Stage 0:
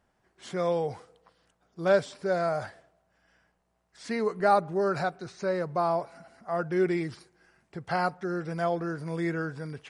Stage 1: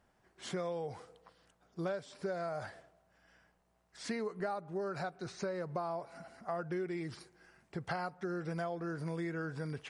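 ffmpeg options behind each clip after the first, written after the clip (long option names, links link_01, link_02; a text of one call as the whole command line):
ffmpeg -i in.wav -af "acompressor=threshold=-34dB:ratio=16" out.wav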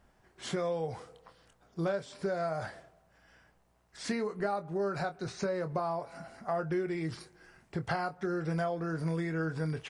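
ffmpeg -i in.wav -filter_complex "[0:a]lowshelf=frequency=73:gain=9,asplit=2[link_01][link_02];[link_02]adelay=25,volume=-10dB[link_03];[link_01][link_03]amix=inputs=2:normalize=0,volume=4dB" out.wav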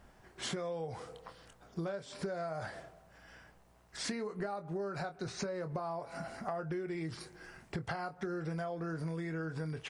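ffmpeg -i in.wav -af "acompressor=threshold=-42dB:ratio=5,volume=5.5dB" out.wav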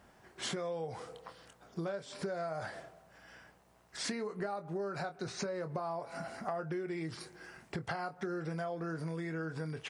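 ffmpeg -i in.wav -af "highpass=frequency=130:poles=1,volume=1dB" out.wav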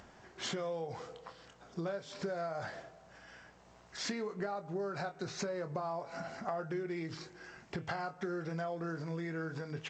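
ffmpeg -i in.wav -af "acompressor=mode=upward:threshold=-51dB:ratio=2.5,bandreject=frequency=157.6:width_type=h:width=4,bandreject=frequency=315.2:width_type=h:width=4,bandreject=frequency=472.8:width_type=h:width=4,bandreject=frequency=630.4:width_type=h:width=4,bandreject=frequency=788:width_type=h:width=4,bandreject=frequency=945.6:width_type=h:width=4,bandreject=frequency=1103.2:width_type=h:width=4,bandreject=frequency=1260.8:width_type=h:width=4,bandreject=frequency=1418.4:width_type=h:width=4,bandreject=frequency=1576:width_type=h:width=4,bandreject=frequency=1733.6:width_type=h:width=4,bandreject=frequency=1891.2:width_type=h:width=4,bandreject=frequency=2048.8:width_type=h:width=4,bandreject=frequency=2206.4:width_type=h:width=4,bandreject=frequency=2364:width_type=h:width=4,bandreject=frequency=2521.6:width_type=h:width=4,bandreject=frequency=2679.2:width_type=h:width=4,bandreject=frequency=2836.8:width_type=h:width=4,bandreject=frequency=2994.4:width_type=h:width=4,bandreject=frequency=3152:width_type=h:width=4,bandreject=frequency=3309.6:width_type=h:width=4,bandreject=frequency=3467.2:width_type=h:width=4,bandreject=frequency=3624.8:width_type=h:width=4" -ar 16000 -c:a g722 out.g722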